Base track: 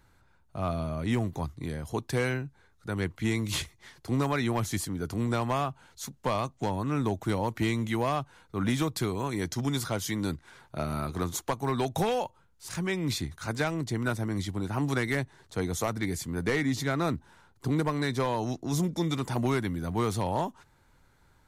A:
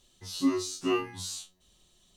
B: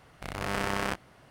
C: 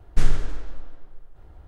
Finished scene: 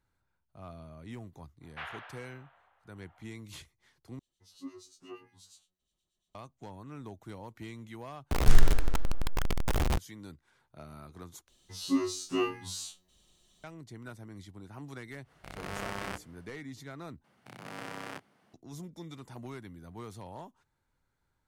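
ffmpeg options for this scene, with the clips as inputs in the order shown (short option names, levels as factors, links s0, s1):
-filter_complex "[3:a]asplit=2[s0][s1];[1:a]asplit=2[s2][s3];[2:a]asplit=2[s4][s5];[0:a]volume=0.158[s6];[s0]asuperpass=centerf=1500:order=8:qfactor=0.6[s7];[s2]acrossover=split=1800[s8][s9];[s8]aeval=exprs='val(0)*(1-0.7/2+0.7/2*cos(2*PI*8.5*n/s))':c=same[s10];[s9]aeval=exprs='val(0)*(1-0.7/2-0.7/2*cos(2*PI*8.5*n/s))':c=same[s11];[s10][s11]amix=inputs=2:normalize=0[s12];[s1]aeval=exprs='val(0)+0.5*0.119*sgn(val(0))':c=same[s13];[s4]bandreject=f=60:t=h:w=6,bandreject=f=120:t=h:w=6,bandreject=f=180:t=h:w=6,bandreject=f=240:t=h:w=6,bandreject=f=300:t=h:w=6,bandreject=f=360:t=h:w=6,bandreject=f=420:t=h:w=6,bandreject=f=480:t=h:w=6,bandreject=f=540:t=h:w=6[s14];[s5]afreqshift=75[s15];[s6]asplit=5[s16][s17][s18][s19][s20];[s16]atrim=end=4.194[s21];[s12]atrim=end=2.16,asetpts=PTS-STARTPTS,volume=0.141[s22];[s17]atrim=start=6.346:end=8.314[s23];[s13]atrim=end=1.67,asetpts=PTS-STARTPTS,volume=0.794[s24];[s18]atrim=start=9.976:end=11.484[s25];[s3]atrim=end=2.16,asetpts=PTS-STARTPTS,volume=0.794[s26];[s19]atrim=start=13.636:end=17.244[s27];[s15]atrim=end=1.3,asetpts=PTS-STARTPTS,volume=0.266[s28];[s20]atrim=start=18.536[s29];[s7]atrim=end=1.67,asetpts=PTS-STARTPTS,volume=0.794,afade=t=in:d=0.05,afade=t=out:st=1.62:d=0.05,adelay=1600[s30];[s14]atrim=end=1.3,asetpts=PTS-STARTPTS,volume=0.422,afade=t=in:d=0.1,afade=t=out:st=1.2:d=0.1,adelay=15220[s31];[s21][s22]acrossfade=d=0.004:c1=hsin:c2=hsin[s32];[s32][s23]acrossfade=d=0.004:c1=hsin:c2=hsin[s33];[s33][s24]acrossfade=d=0.004:c1=hsin:c2=hsin[s34];[s34][s25]acrossfade=d=0.004:c1=hsin:c2=hsin[s35];[s35][s26]acrossfade=d=0.004:c1=hsin:c2=hsin[s36];[s36][s27]acrossfade=d=0.004:c1=hsin:c2=hsin[s37];[s37][s28]acrossfade=d=0.004:c1=hsin:c2=hsin[s38];[s38][s29]acrossfade=d=0.004:c1=hsin:c2=hsin[s39];[s39][s30][s31]amix=inputs=3:normalize=0"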